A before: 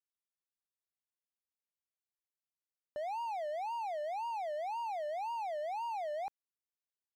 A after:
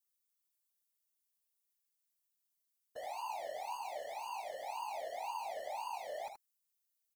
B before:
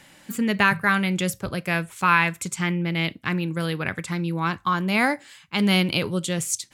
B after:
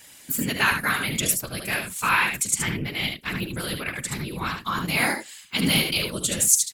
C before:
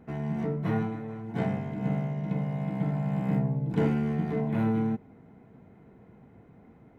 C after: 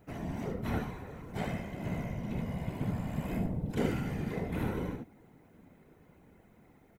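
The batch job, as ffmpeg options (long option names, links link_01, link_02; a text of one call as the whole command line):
ffmpeg -i in.wav -af "aecho=1:1:44|74:0.158|0.501,crystalizer=i=5:c=0,afftfilt=real='hypot(re,im)*cos(2*PI*random(0))':imag='hypot(re,im)*sin(2*PI*random(1))':win_size=512:overlap=0.75,volume=-1dB" out.wav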